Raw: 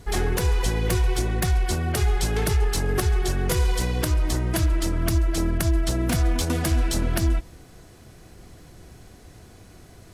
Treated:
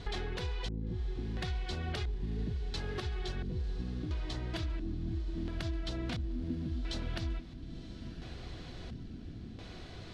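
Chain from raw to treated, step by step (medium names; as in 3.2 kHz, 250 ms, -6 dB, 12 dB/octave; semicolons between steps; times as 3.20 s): LFO low-pass square 0.73 Hz 250–3800 Hz; compression 6:1, threshold -35 dBFS, peak gain reduction 17.5 dB; echo that smears into a reverb 1010 ms, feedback 53%, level -13 dB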